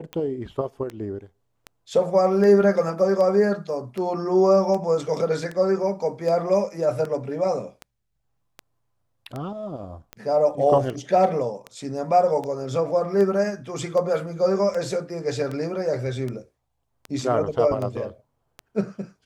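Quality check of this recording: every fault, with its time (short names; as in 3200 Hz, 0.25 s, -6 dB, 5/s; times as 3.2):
tick 78 rpm -19 dBFS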